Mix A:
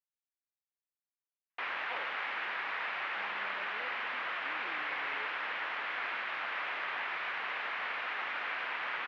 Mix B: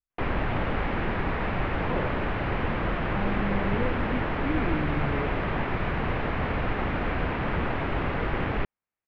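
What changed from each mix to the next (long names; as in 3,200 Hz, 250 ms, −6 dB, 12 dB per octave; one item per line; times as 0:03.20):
background: entry −1.40 s
master: remove high-pass filter 1,400 Hz 12 dB per octave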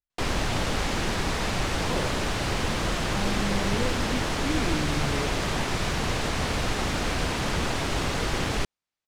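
master: remove low-pass filter 2,400 Hz 24 dB per octave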